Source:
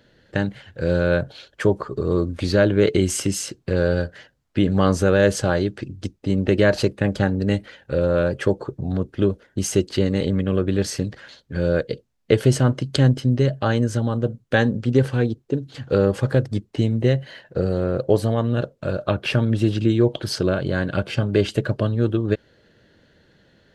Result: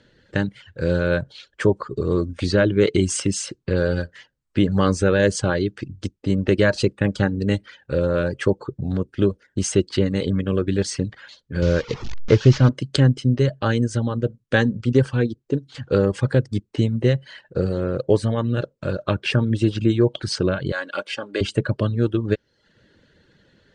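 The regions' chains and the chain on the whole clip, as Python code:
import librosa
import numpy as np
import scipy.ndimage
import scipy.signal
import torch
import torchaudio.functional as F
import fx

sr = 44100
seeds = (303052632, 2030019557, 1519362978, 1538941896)

y = fx.chain(x, sr, fx.delta_mod(bps=32000, step_db=-27.0),
    fx.low_shelf(hz=82.0, db=12.0), at=(11.62, 12.69))
y = fx.chain(y, sr, fx.highpass(hz=520.0, slope=12),
    fx.comb(ms=3.6, depth=0.35), at=(20.72, 21.41))
y = scipy.signal.sosfilt(scipy.signal.butter(16, 9600.0, 'lowpass', fs=sr, output='sos'), y)
y = fx.peak_eq(y, sr, hz=700.0, db=-7.0, octaves=0.35)
y = fx.dereverb_blind(y, sr, rt60_s=0.56)
y = y * 10.0 ** (1.0 / 20.0)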